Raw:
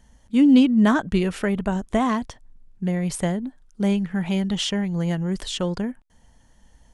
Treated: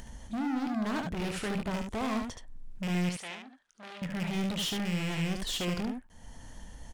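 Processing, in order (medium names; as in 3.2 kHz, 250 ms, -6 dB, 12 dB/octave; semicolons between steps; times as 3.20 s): rattle on loud lows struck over -27 dBFS, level -20 dBFS; in parallel at -0.5 dB: upward compressor, threshold -24 dBFS; on the sum: peak limiter -9 dBFS, peak gain reduction 9 dB; hard clipper -22.5 dBFS, distortion -6 dB; 3.09–4.02 s: band-pass filter 2.4 kHz, Q 0.8; on a send: early reflections 23 ms -12.5 dB, 73 ms -5 dB; on the sum: trim -9 dB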